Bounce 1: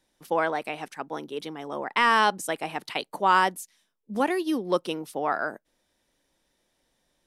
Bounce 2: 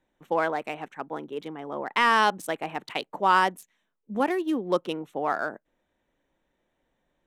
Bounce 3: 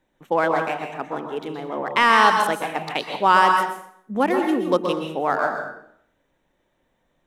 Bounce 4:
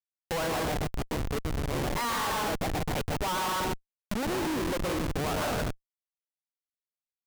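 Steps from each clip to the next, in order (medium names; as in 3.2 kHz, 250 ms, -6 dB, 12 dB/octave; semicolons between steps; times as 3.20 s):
local Wiener filter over 9 samples
plate-style reverb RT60 0.65 s, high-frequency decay 0.8×, pre-delay 110 ms, DRR 3.5 dB; trim +4.5 dB
median filter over 5 samples; Schmitt trigger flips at -26.5 dBFS; tape noise reduction on one side only encoder only; trim -7 dB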